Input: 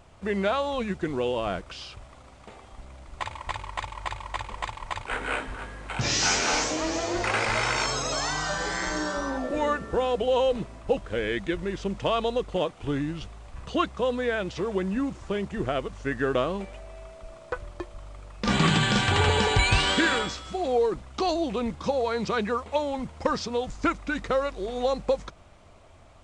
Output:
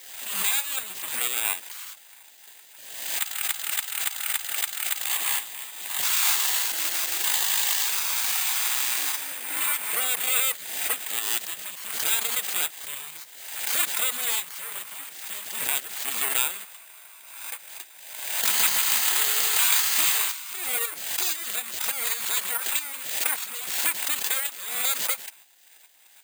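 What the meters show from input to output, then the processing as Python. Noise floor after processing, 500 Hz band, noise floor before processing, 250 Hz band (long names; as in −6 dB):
−51 dBFS, −18.5 dB, −51 dBFS, −22.5 dB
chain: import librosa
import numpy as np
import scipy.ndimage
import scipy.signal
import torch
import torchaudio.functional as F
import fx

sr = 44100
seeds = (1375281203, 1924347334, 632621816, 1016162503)

p1 = fx.lower_of_two(x, sr, delay_ms=0.81)
p2 = scipy.signal.sosfilt(scipy.signal.butter(2, 1200.0, 'highpass', fs=sr, output='sos'), p1)
p3 = fx.spec_gate(p2, sr, threshold_db=-10, keep='weak')
p4 = fx.peak_eq(p3, sr, hz=2600.0, db=3.5, octaves=2.2)
p5 = fx.level_steps(p4, sr, step_db=13)
p6 = p4 + F.gain(torch.from_numpy(p5), 2.0).numpy()
p7 = (np.kron(scipy.signal.resample_poly(p6, 1, 4), np.eye(4)[0]) * 4)[:len(p6)]
y = fx.pre_swell(p7, sr, db_per_s=52.0)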